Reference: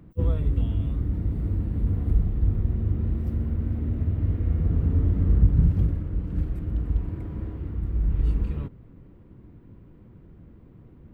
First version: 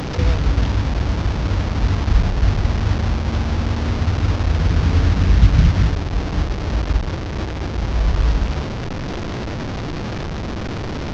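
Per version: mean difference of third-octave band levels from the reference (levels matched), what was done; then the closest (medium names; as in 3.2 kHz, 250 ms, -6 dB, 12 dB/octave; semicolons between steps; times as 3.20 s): 12.5 dB: one-bit delta coder 32 kbps, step -25 dBFS; trim +6 dB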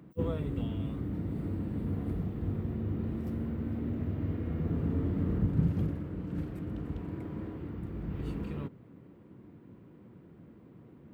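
3.5 dB: high-pass 160 Hz 12 dB/octave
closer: second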